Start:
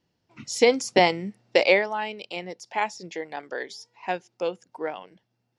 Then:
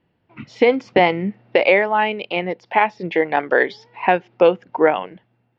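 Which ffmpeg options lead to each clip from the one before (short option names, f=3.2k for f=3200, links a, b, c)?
-af "dynaudnorm=f=410:g=5:m=11.5dB,alimiter=limit=-10dB:level=0:latency=1:release=268,lowpass=f=2.9k:w=0.5412,lowpass=f=2.9k:w=1.3066,volume=8dB"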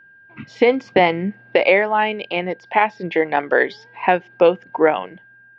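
-af "aeval=exprs='val(0)+0.00501*sin(2*PI*1600*n/s)':c=same"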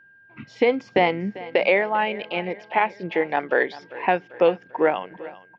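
-af "aecho=1:1:394|788|1182|1576:0.126|0.0667|0.0354|0.0187,volume=-4.5dB"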